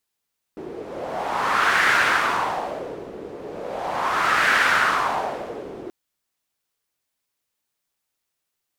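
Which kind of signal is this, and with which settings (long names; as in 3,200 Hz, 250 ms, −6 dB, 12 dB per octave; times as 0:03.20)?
wind from filtered noise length 5.33 s, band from 390 Hz, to 1,600 Hz, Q 2.9, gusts 2, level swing 18 dB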